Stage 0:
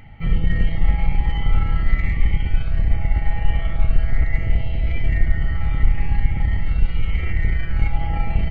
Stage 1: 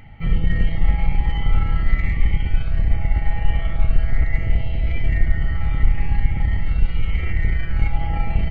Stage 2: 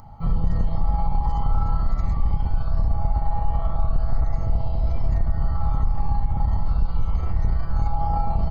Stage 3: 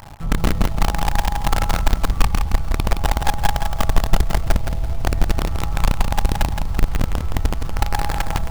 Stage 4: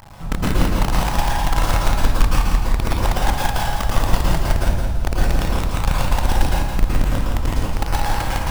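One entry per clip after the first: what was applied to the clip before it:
no processing that can be heard
drawn EQ curve 220 Hz 0 dB, 320 Hz −4 dB, 450 Hz −1 dB, 1,100 Hz +13 dB, 2,000 Hz −21 dB, 3,000 Hz −15 dB, 4,800 Hz +9 dB; brickwall limiter −10 dBFS, peak gain reduction 6 dB; level −1.5 dB
in parallel at −5 dB: log-companded quantiser 2 bits; on the sum: feedback echo at a low word length 168 ms, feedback 35%, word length 6 bits, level −6 dB; level −4 dB
dense smooth reverb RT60 0.68 s, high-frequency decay 0.85×, pre-delay 100 ms, DRR −4 dB; level −3.5 dB

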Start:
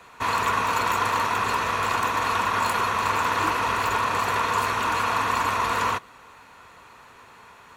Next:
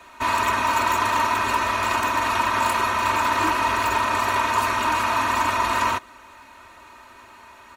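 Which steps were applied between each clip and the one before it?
comb filter 3.2 ms, depth 91%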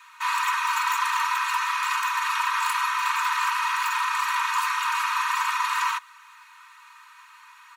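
Butterworth high-pass 960 Hz 96 dB per octave
level −1.5 dB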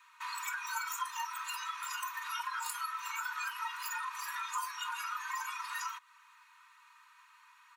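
noise reduction from a noise print of the clip's start 18 dB
downward compressor 2.5 to 1, threshold −46 dBFS, peak gain reduction 13 dB
level +6.5 dB

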